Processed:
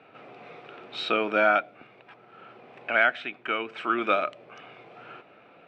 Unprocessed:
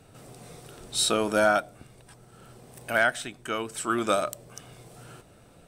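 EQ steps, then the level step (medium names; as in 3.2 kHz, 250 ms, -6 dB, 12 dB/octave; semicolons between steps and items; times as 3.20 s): dynamic bell 920 Hz, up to -6 dB, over -37 dBFS, Q 0.7; cabinet simulation 300–3100 Hz, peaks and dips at 760 Hz +3 dB, 1.3 kHz +5 dB, 2.4 kHz +9 dB; +2.5 dB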